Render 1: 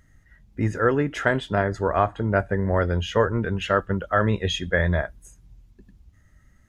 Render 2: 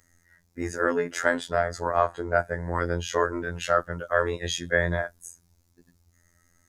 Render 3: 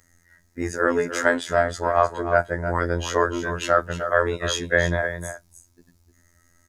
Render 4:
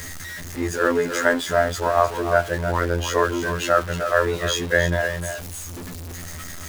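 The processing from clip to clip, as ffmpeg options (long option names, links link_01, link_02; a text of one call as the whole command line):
ffmpeg -i in.wav -af "afftfilt=real='hypot(re,im)*cos(PI*b)':imag='0':win_size=2048:overlap=0.75,bass=frequency=250:gain=-9,treble=frequency=4000:gain=-13,aexciter=amount=9.5:drive=4.9:freq=4500,volume=2dB" out.wav
ffmpeg -i in.wav -af "aecho=1:1:305:0.316,volume=3.5dB" out.wav
ffmpeg -i in.wav -af "aeval=exprs='val(0)+0.5*0.0376*sgn(val(0))':channel_layout=same" out.wav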